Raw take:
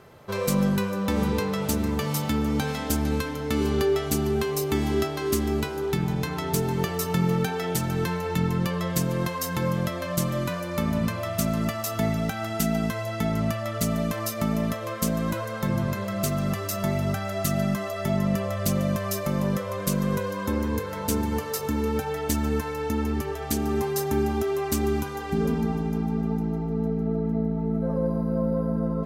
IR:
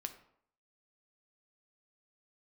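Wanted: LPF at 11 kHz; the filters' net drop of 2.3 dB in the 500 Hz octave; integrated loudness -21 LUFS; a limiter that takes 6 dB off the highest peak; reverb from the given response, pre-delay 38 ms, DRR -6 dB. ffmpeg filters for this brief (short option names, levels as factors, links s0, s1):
-filter_complex "[0:a]lowpass=11000,equalizer=f=500:t=o:g=-3,alimiter=limit=0.133:level=0:latency=1,asplit=2[s0][s1];[1:a]atrim=start_sample=2205,adelay=38[s2];[s1][s2]afir=irnorm=-1:irlink=0,volume=2.51[s3];[s0][s3]amix=inputs=2:normalize=0,volume=1.06"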